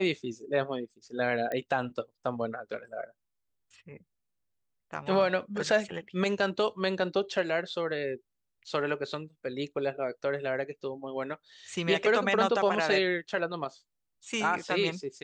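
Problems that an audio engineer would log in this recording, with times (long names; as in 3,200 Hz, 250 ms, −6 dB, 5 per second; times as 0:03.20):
0:01.52: click −21 dBFS
0:12.42: drop-out 2.3 ms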